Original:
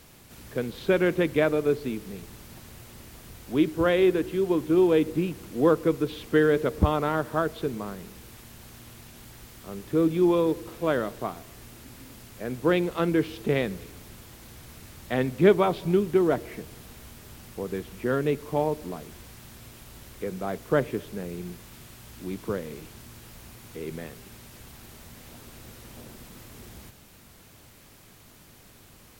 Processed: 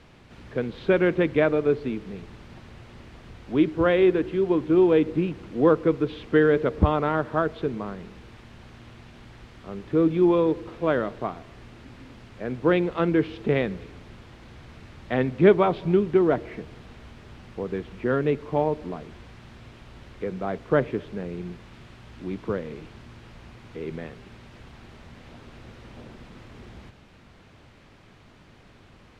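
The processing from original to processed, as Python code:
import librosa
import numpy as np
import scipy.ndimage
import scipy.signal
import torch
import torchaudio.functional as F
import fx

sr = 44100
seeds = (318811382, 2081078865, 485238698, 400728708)

y = scipy.signal.sosfilt(scipy.signal.butter(2, 3100.0, 'lowpass', fs=sr, output='sos'), x)
y = F.gain(torch.from_numpy(y), 2.0).numpy()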